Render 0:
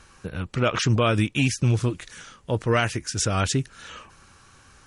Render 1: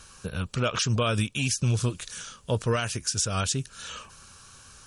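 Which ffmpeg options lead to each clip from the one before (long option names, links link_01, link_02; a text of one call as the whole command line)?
ffmpeg -i in.wav -af "highshelf=frequency=3500:gain=9.5,alimiter=limit=-14.5dB:level=0:latency=1:release=298,equalizer=frequency=315:width_type=o:width=0.33:gain=-9,equalizer=frequency=800:width_type=o:width=0.33:gain=-4,equalizer=frequency=2000:width_type=o:width=0.33:gain=-9" out.wav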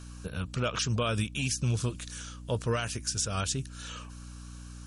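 ffmpeg -i in.wav -af "aeval=exprs='val(0)+0.0112*(sin(2*PI*60*n/s)+sin(2*PI*2*60*n/s)/2+sin(2*PI*3*60*n/s)/3+sin(2*PI*4*60*n/s)/4+sin(2*PI*5*60*n/s)/5)':channel_layout=same,volume=-4dB" out.wav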